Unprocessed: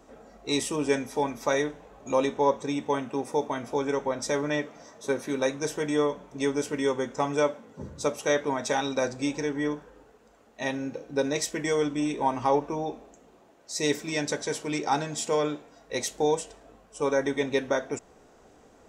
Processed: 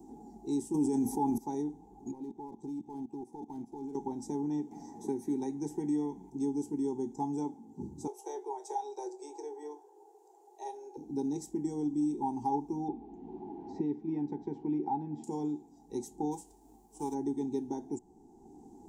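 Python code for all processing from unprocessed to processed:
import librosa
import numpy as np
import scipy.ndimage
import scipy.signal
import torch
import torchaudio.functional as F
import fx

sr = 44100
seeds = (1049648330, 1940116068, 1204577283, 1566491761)

y = fx.chain(x, sr, fx.high_shelf(hz=8100.0, db=10.0),
    fx.env_flatten(amount_pct=70), at=(0.74, 1.38))
y = fx.chain(y, sr, fx.high_shelf(hz=6800.0, db=-11.0),
    fx.level_steps(step_db=19),
    fx.clip_hard(threshold_db=-35.0), at=(2.11, 3.95))
y = fx.chain(y, sr, fx.peak_eq(hz=2000.0, db=11.0, octaves=0.54),
    fx.band_squash(depth_pct=40), at=(4.71, 6.3))
y = fx.chain(y, sr, fx.steep_highpass(hz=360.0, slope=96),
    fx.doubler(ms=24.0, db=-11), at=(8.07, 10.97))
y = fx.chain(y, sr, fx.lowpass(hz=2300.0, slope=24),
    fx.band_squash(depth_pct=70), at=(12.88, 15.24))
y = fx.envelope_flatten(y, sr, power=0.6, at=(16.31, 17.13), fade=0.02)
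y = fx.peak_eq(y, sr, hz=170.0, db=-7.0, octaves=1.6, at=(16.31, 17.13), fade=0.02)
y = fx.curve_eq(y, sr, hz=(120.0, 200.0, 370.0, 580.0, 830.0, 1200.0, 2800.0, 7200.0, 11000.0), db=(0, 5, 8, -29, 7, -30, -26, -4, -2))
y = fx.band_squash(y, sr, depth_pct=40)
y = y * 10.0 ** (-8.0 / 20.0)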